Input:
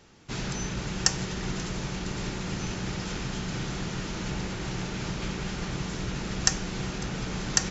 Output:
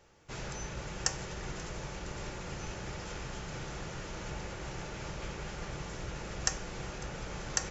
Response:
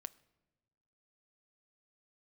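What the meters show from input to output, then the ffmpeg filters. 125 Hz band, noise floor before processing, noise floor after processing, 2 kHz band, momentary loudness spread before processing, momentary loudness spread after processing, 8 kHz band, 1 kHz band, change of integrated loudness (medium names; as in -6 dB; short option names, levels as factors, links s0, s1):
-9.0 dB, -35 dBFS, -43 dBFS, -6.5 dB, 7 LU, 7 LU, no reading, -5.0 dB, -8.0 dB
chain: -filter_complex "[0:a]equalizer=f=250:t=o:w=1:g=-10,equalizer=f=500:t=o:w=1:g=5,equalizer=f=4000:t=o:w=1:g=-5[s0];[1:a]atrim=start_sample=2205,asetrate=74970,aresample=44100[s1];[s0][s1]afir=irnorm=-1:irlink=0,volume=1.58"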